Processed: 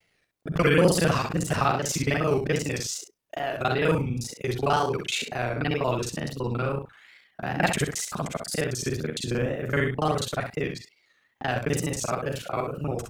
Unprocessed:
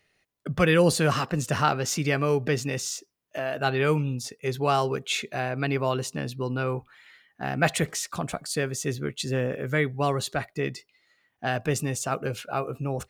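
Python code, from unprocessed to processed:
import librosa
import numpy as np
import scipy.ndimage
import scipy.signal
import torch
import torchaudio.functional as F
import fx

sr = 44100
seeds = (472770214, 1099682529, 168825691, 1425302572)

y = fx.local_reverse(x, sr, ms=35.0)
y = fx.wow_flutter(y, sr, seeds[0], rate_hz=2.1, depth_cents=140.0)
y = fx.room_early_taps(y, sr, ms=(48, 65), db=(-15.5, -7.5))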